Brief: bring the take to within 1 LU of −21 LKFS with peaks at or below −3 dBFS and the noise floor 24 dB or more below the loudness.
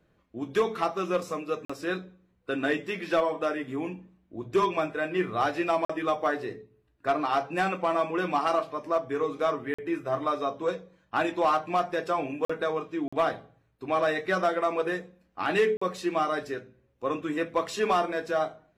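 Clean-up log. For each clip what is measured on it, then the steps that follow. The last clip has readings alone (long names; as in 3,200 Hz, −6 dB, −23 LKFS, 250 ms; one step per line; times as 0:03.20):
number of dropouts 6; longest dropout 45 ms; integrated loudness −28.5 LKFS; sample peak −16.5 dBFS; target loudness −21.0 LKFS
→ repair the gap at 0:01.65/0:05.85/0:09.74/0:12.45/0:13.08/0:15.77, 45 ms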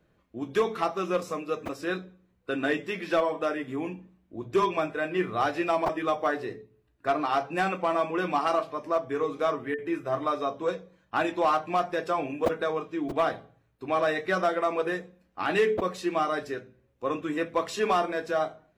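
number of dropouts 0; integrated loudness −28.5 LKFS; sample peak −13.5 dBFS; target loudness −21.0 LKFS
→ level +7.5 dB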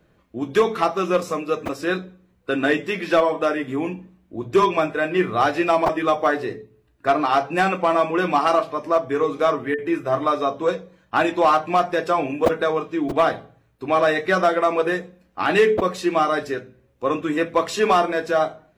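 integrated loudness −21.0 LKFS; sample peak −6.0 dBFS; background noise floor −61 dBFS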